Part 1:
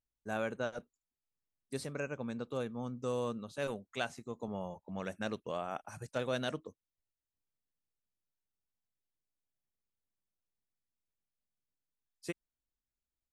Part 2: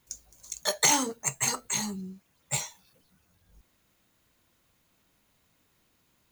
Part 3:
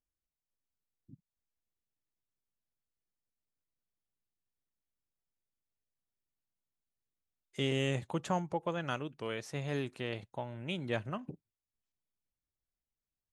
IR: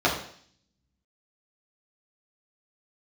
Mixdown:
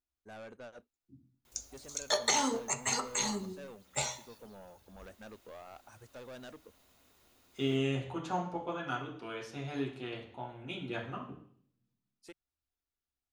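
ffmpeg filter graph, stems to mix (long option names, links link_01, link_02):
-filter_complex "[0:a]highshelf=frequency=8100:gain=-5.5,asoftclip=type=tanh:threshold=-36.5dB,volume=-6.5dB[link_01];[1:a]acompressor=threshold=-31dB:ratio=2.5,adelay=1450,volume=2.5dB,asplit=2[link_02][link_03];[link_03]volume=-22dB[link_04];[2:a]equalizer=frequency=560:width=0.96:gain=-6.5,bandreject=frequency=600:width=12,volume=-9.5dB,asplit=2[link_05][link_06];[link_06]volume=-6dB[link_07];[3:a]atrim=start_sample=2205[link_08];[link_04][link_07]amix=inputs=2:normalize=0[link_09];[link_09][link_08]afir=irnorm=-1:irlink=0[link_10];[link_01][link_02][link_05][link_10]amix=inputs=4:normalize=0,acrossover=split=7700[link_11][link_12];[link_12]acompressor=threshold=-58dB:ratio=4:attack=1:release=60[link_13];[link_11][link_13]amix=inputs=2:normalize=0,equalizer=frequency=160:width_type=o:width=0.48:gain=-12"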